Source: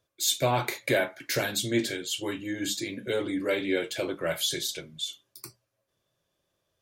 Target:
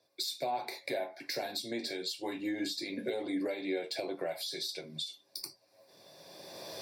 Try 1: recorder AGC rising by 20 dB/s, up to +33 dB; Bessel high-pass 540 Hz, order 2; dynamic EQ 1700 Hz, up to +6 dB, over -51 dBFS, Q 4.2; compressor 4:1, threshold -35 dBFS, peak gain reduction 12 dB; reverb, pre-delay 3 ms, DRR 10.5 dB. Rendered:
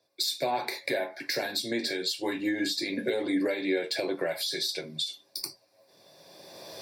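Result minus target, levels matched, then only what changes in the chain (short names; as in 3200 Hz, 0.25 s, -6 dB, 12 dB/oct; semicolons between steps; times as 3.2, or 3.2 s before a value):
compressor: peak gain reduction -7.5 dB; 1000 Hz band -2.5 dB
change: dynamic EQ 720 Hz, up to +6 dB, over -51 dBFS, Q 4.2; change: compressor 4:1, threshold -44.5 dBFS, peak gain reduction 19.5 dB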